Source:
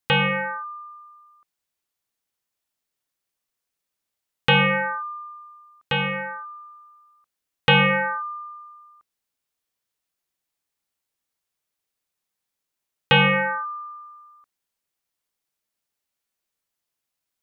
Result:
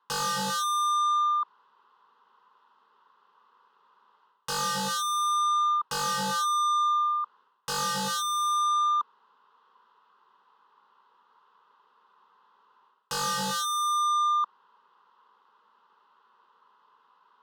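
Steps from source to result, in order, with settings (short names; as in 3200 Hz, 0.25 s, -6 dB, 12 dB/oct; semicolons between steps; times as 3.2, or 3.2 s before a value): reverse; compressor 5:1, threshold -29 dBFS, peak gain reduction 14.5 dB; reverse; speaker cabinet 280–2800 Hz, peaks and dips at 550 Hz -10 dB, 1000 Hz +9 dB, 1800 Hz -9 dB; overdrive pedal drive 28 dB, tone 2200 Hz, clips at -22 dBFS; sine folder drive 8 dB, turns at -22.5 dBFS; fixed phaser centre 460 Hz, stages 8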